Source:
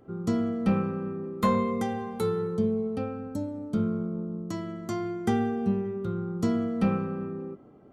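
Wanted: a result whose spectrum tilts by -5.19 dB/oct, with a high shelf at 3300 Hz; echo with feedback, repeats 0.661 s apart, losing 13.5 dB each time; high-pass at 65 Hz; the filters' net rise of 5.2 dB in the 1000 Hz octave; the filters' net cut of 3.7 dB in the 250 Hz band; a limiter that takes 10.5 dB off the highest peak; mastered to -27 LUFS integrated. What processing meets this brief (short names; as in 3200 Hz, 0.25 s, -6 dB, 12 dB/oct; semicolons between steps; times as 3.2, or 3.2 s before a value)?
HPF 65 Hz; bell 250 Hz -5 dB; bell 1000 Hz +6 dB; high shelf 3300 Hz +3.5 dB; limiter -21.5 dBFS; feedback echo 0.661 s, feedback 21%, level -13.5 dB; gain +5 dB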